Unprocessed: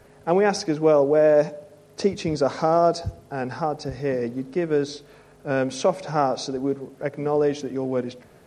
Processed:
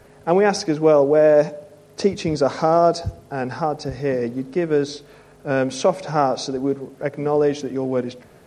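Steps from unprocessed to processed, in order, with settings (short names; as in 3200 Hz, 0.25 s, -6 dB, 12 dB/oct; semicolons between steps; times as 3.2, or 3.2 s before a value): gain +3 dB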